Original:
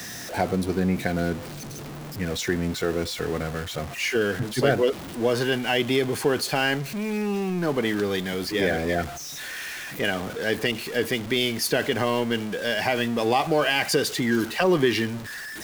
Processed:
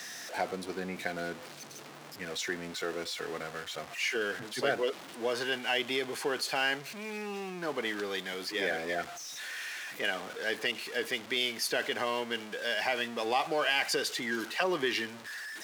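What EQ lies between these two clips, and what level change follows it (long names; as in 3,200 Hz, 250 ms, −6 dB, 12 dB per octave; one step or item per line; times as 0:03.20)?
meter weighting curve A
−6.0 dB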